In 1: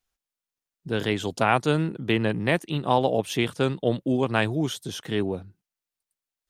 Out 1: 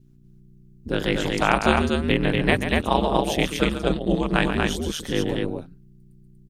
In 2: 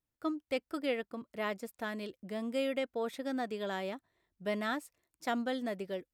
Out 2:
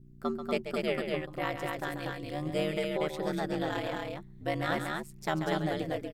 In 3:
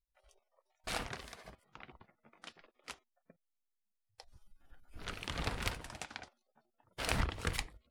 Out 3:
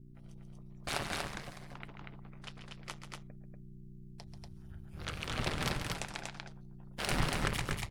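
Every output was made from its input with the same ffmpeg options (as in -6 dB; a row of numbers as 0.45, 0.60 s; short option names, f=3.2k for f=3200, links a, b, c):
-af "adynamicequalizer=threshold=0.0158:dfrequency=490:dqfactor=0.89:tfrequency=490:tqfactor=0.89:attack=5:release=100:ratio=0.375:range=2:mode=cutabove:tftype=bell,aeval=exprs='val(0)+0.002*(sin(2*PI*60*n/s)+sin(2*PI*2*60*n/s)/2+sin(2*PI*3*60*n/s)/3+sin(2*PI*4*60*n/s)/4+sin(2*PI*5*60*n/s)/5)':c=same,aeval=exprs='val(0)*sin(2*PI*77*n/s)':c=same,aecho=1:1:137|239.1:0.355|0.708,volume=5dB"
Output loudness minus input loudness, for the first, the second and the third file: +2.5, +3.5, +2.0 LU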